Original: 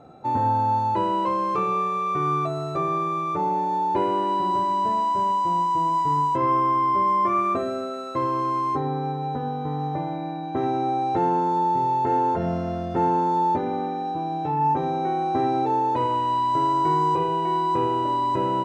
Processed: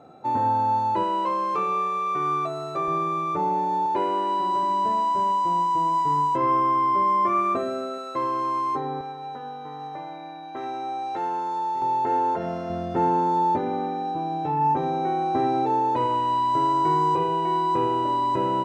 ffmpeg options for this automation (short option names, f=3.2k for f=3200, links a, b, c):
-af "asetnsamples=n=441:p=0,asendcmd='1.03 highpass f 410;2.88 highpass f 100;3.86 highpass f 380;4.63 highpass f 170;7.98 highpass f 410;9.01 highpass f 1200;11.82 highpass f 390;12.7 highpass f 100',highpass=f=190:p=1"